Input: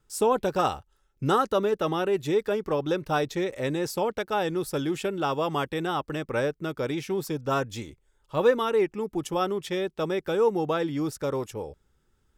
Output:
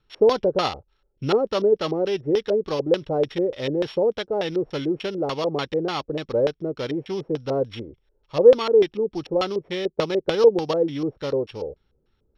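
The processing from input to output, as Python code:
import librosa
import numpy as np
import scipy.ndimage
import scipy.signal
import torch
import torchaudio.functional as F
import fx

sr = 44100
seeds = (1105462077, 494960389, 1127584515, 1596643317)

y = np.r_[np.sort(x[:len(x) // 8 * 8].reshape(-1, 8), axis=1).ravel(), x[len(x) // 8 * 8:]]
y = fx.transient(y, sr, attack_db=5, sustain_db=-2, at=(9.85, 10.75))
y = fx.filter_lfo_lowpass(y, sr, shape='square', hz=3.4, low_hz=510.0, high_hz=3300.0, q=3.0)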